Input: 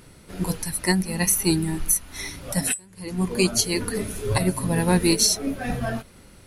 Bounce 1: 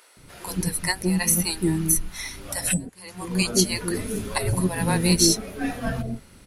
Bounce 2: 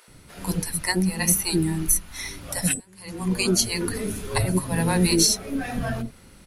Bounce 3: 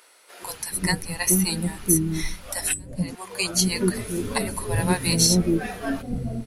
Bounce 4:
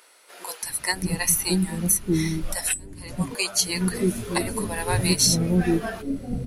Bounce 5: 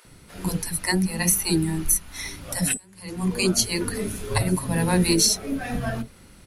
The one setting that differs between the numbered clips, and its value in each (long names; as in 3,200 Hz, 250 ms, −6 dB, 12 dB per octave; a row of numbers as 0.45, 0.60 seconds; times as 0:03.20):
multiband delay without the direct sound, delay time: 170, 80, 430, 630, 50 milliseconds